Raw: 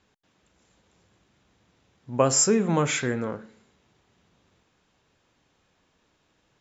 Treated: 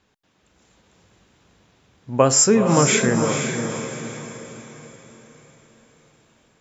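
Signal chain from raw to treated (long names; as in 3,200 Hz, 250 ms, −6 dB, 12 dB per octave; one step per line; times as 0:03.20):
automatic gain control gain up to 4.5 dB
on a send: feedback delay with all-pass diffusion 474 ms, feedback 45%, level −6 dB
on the sum: level +2 dB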